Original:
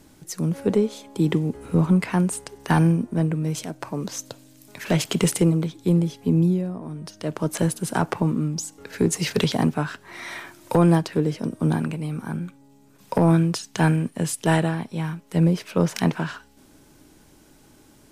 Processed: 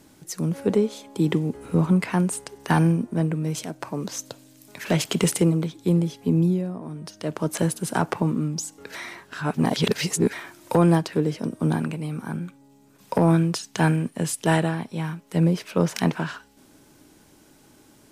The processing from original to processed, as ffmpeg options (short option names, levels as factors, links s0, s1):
-filter_complex "[0:a]asplit=3[s0][s1][s2];[s0]atrim=end=8.952[s3];[s1]atrim=start=8.948:end=10.332,asetpts=PTS-STARTPTS,areverse[s4];[s2]atrim=start=10.328[s5];[s3][s4]acrossfade=d=0.004:c1=hsin:c2=hsin[s6];[s6][s5]acrossfade=d=0.004:c1=hsin:c2=hsin,lowshelf=f=61:g=-11"